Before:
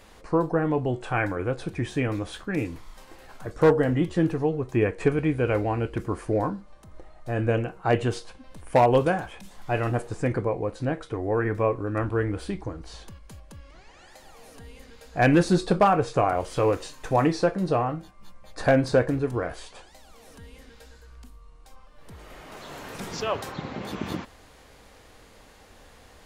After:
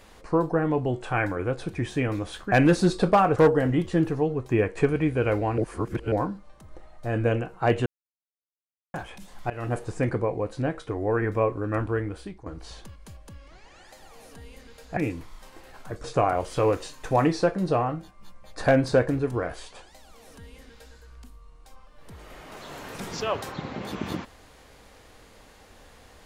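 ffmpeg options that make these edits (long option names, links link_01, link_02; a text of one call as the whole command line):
ffmpeg -i in.wav -filter_complex "[0:a]asplit=11[link_01][link_02][link_03][link_04][link_05][link_06][link_07][link_08][link_09][link_10][link_11];[link_01]atrim=end=2.522[link_12];[link_02]atrim=start=15.198:end=16.042[link_13];[link_03]atrim=start=3.588:end=5.812[link_14];[link_04]atrim=start=5.808:end=6.352,asetpts=PTS-STARTPTS,areverse[link_15];[link_05]atrim=start=6.348:end=8.09,asetpts=PTS-STARTPTS,afade=type=out:start_time=1.738:duration=0.004:curve=hsin[link_16];[link_06]atrim=start=8.09:end=9.17,asetpts=PTS-STARTPTS,volume=0[link_17];[link_07]atrim=start=9.17:end=9.73,asetpts=PTS-STARTPTS,afade=type=in:duration=0.004:curve=hsin,afade=type=out:start_time=0.556:duration=0.004:curve=hsin:silence=0.112202[link_18];[link_08]atrim=start=9.73:end=12.69,asetpts=PTS-STARTPTS,afade=type=in:duration=0.28:silence=0.112202,afade=type=out:start_time=2.3:duration=0.66:silence=0.211349[link_19];[link_09]atrim=start=12.69:end=15.202,asetpts=PTS-STARTPTS,afade=type=in:duration=0.004:curve=hsin:silence=0.211349[link_20];[link_10]atrim=start=2.518:end=3.592[link_21];[link_11]atrim=start=16.038[link_22];[link_12][link_13]acrossfade=duration=0.004:curve1=hsin:curve2=hsin[link_23];[link_23][link_14]acrossfade=duration=0.004:curve1=hsin:curve2=hsin[link_24];[link_24][link_15]acrossfade=duration=0.004:curve1=hsin:curve2=hsin[link_25];[link_16][link_17][link_18][link_19][link_20]concat=n=5:v=0:a=1[link_26];[link_25][link_26]acrossfade=duration=0.004:curve1=hsin:curve2=hsin[link_27];[link_27][link_21]acrossfade=duration=0.004:curve1=hsin:curve2=hsin[link_28];[link_28][link_22]acrossfade=duration=0.004:curve1=hsin:curve2=hsin" out.wav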